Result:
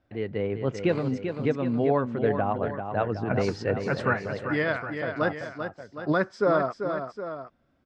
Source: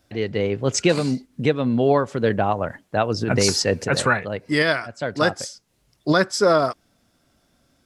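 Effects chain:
low-pass filter 2,100 Hz 12 dB per octave
on a send: multi-tap delay 391/764 ms −7.5/−12 dB
on the sum: level −6 dB

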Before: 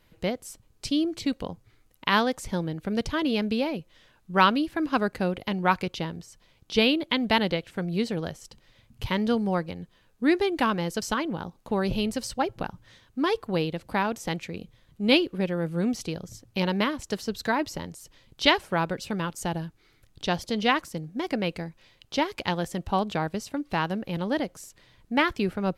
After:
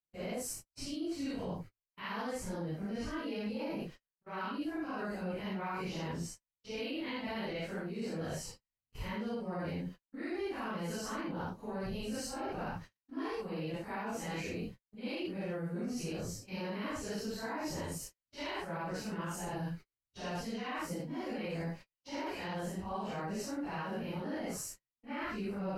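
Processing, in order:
random phases in long frames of 200 ms
noise gate −48 dBFS, range −44 dB
parametric band 3,500 Hz −13.5 dB 0.21 octaves
reversed playback
downward compressor 8 to 1, threshold −38 dBFS, peak gain reduction 22 dB
reversed playback
brickwall limiter −33.5 dBFS, peak gain reduction 5.5 dB
level +3.5 dB

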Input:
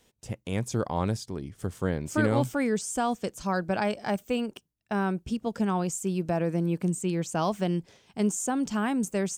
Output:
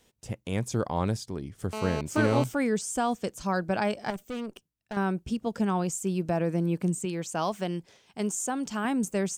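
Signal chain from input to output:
0:01.73–0:02.44: phone interference −34 dBFS
0:04.10–0:04.97: tube saturation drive 31 dB, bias 0.6
0:07.05–0:08.85: low-shelf EQ 330 Hz −7 dB

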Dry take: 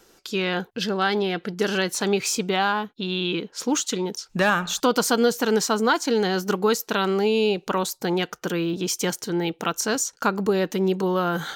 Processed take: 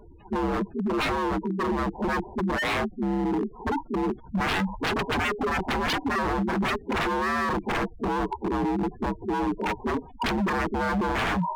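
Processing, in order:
partials spread apart or drawn together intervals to 78%
Butterworth low-pass 1,000 Hz 96 dB per octave
low shelf with overshoot 120 Hz +11 dB, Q 1.5
notch filter 680 Hz, Q 12
harmonic generator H 8 −30 dB, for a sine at −10.5 dBFS
background noise pink −55 dBFS
transient designer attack +1 dB, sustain +5 dB
gate on every frequency bin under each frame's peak −10 dB strong
wave folding −28 dBFS
parametric band 560 Hz −8 dB 0.22 octaves
level +7.5 dB

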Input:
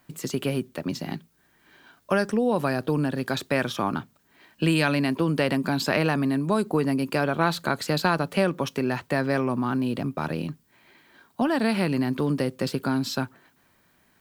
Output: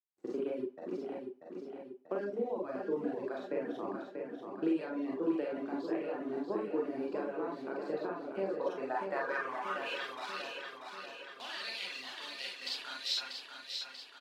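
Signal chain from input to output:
meter weighting curve A
centre clipping without the shift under −34 dBFS
noise gate −40 dBFS, range −14 dB
four-comb reverb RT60 0.41 s, combs from 31 ms, DRR −4 dB
downward compressor 6 to 1, threshold −23 dBFS, peak gain reduction 10 dB
reverb reduction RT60 1.2 s
band-pass filter sweep 350 Hz → 3,600 Hz, 0:08.38–0:10.16
on a send: repeating echo 638 ms, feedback 58%, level −6 dB

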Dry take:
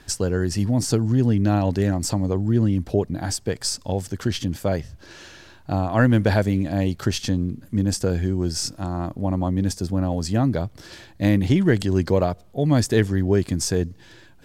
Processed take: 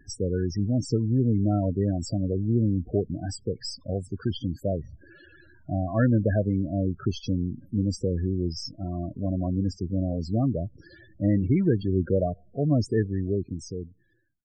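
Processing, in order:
fade-out on the ending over 1.71 s
Butterworth band-reject 850 Hz, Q 4.6
spectral peaks only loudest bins 16
level −4 dB

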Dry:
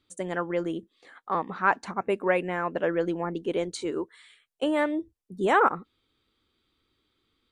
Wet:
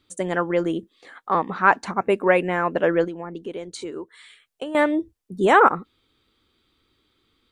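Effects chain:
0:03.04–0:04.75: downward compressor 5 to 1, threshold −37 dBFS, peak gain reduction 13.5 dB
level +6.5 dB

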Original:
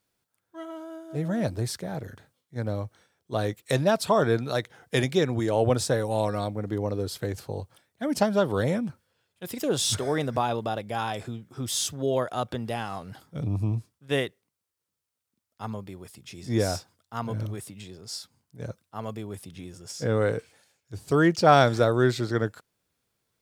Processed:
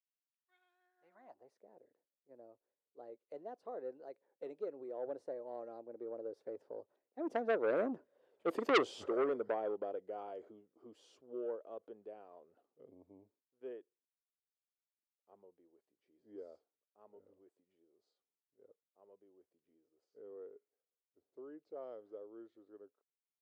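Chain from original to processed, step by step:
source passing by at 0:08.37, 36 m/s, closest 5.2 metres
bass and treble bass −4 dB, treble 0 dB
band-pass filter sweep 2,600 Hz → 460 Hz, 0:00.75–0:01.65
low shelf with overshoot 200 Hz −7 dB, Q 1.5
saturating transformer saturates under 2,000 Hz
level +13 dB

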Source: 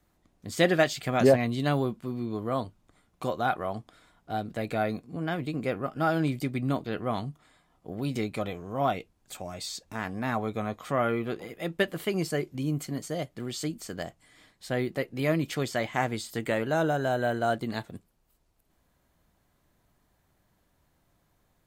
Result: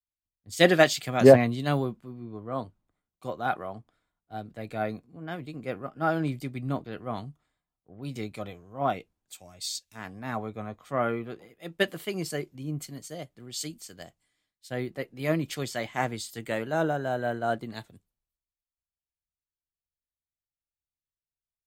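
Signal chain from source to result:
multiband upward and downward expander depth 100%
level −3 dB

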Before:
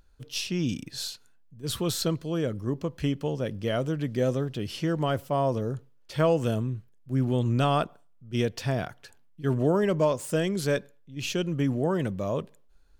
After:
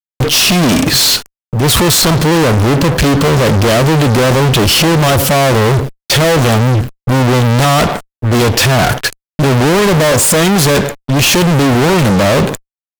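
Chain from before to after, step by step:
downward expander −42 dBFS
in parallel at +3 dB: downward compressor 4 to 1, threshold −36 dBFS, peak gain reduction 14.5 dB
on the sum: fuzz pedal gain 50 dB, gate −52 dBFS
level +4.5 dB

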